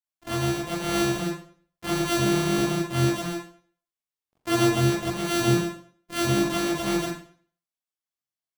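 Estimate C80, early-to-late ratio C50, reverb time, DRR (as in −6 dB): 7.0 dB, 4.0 dB, 0.50 s, −8.5 dB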